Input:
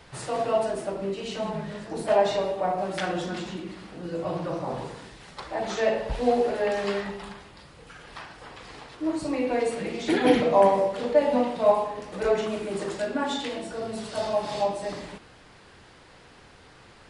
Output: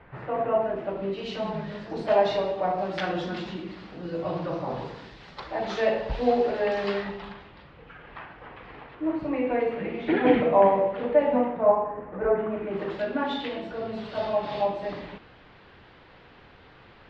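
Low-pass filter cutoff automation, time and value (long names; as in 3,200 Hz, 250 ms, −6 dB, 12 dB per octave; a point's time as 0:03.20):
low-pass filter 24 dB per octave
0:00.62 2,200 Hz
0:01.27 4,800 Hz
0:06.93 4,800 Hz
0:08.00 2,700 Hz
0:11.25 2,700 Hz
0:11.70 1,700 Hz
0:12.43 1,700 Hz
0:12.97 3,700 Hz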